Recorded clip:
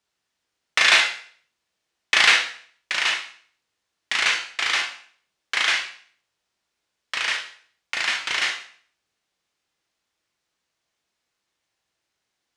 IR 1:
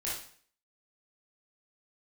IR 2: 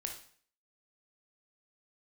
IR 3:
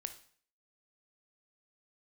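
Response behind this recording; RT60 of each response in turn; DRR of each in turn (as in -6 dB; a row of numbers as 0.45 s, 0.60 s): 2; 0.50 s, 0.50 s, 0.50 s; -7.5 dB, 2.5 dB, 8.5 dB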